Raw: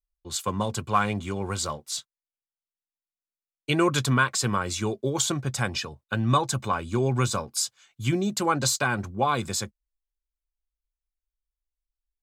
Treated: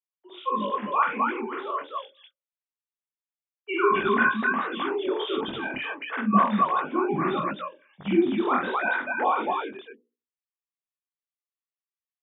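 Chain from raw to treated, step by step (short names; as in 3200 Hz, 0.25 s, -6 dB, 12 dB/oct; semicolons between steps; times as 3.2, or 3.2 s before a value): sine-wave speech; notches 60/120/180/240/300/360/420/480/540/600 Hz; loudspeakers at several distances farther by 16 m 0 dB, 31 m -9 dB, 89 m -1 dB; detuned doubles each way 51 cents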